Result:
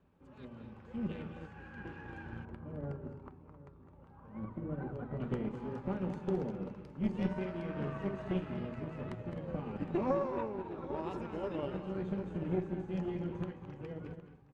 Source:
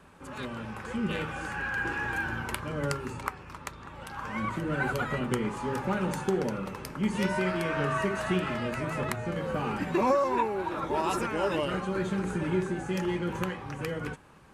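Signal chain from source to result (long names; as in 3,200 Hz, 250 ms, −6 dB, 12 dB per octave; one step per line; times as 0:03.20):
parametric band 1,500 Hz −12 dB 2.2 octaves
multi-tap delay 202/214/262/763 ms −18/−9/−14.5/−13.5 dB
tube saturation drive 20 dB, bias 0.7
low-pass filter 2,600 Hz 12 dB per octave, from 0:02.45 1,100 Hz, from 0:05.20 2,400 Hz
expander for the loud parts 1.5 to 1, over −45 dBFS
level +1 dB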